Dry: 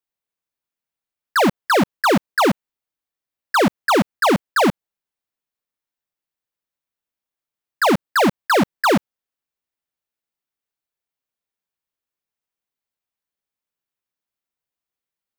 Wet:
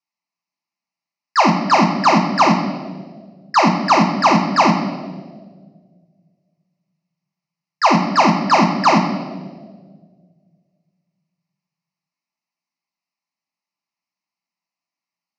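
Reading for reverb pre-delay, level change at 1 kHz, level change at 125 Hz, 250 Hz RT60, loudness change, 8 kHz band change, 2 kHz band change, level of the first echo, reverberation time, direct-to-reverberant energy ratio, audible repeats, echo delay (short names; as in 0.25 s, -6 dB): 6 ms, +6.0 dB, +6.0 dB, 2.1 s, +3.0 dB, 0.0 dB, -0.5 dB, none, 1.7 s, 1.0 dB, none, none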